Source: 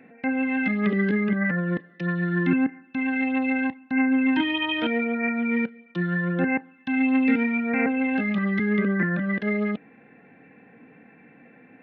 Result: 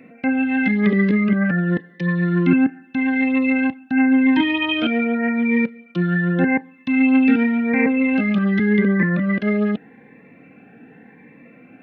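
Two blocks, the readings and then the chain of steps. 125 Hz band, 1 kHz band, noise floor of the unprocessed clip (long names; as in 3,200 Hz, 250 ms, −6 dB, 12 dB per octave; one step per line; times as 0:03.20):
+6.5 dB, +3.0 dB, −54 dBFS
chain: phaser whose notches keep moving one way rising 0.87 Hz
level +6.5 dB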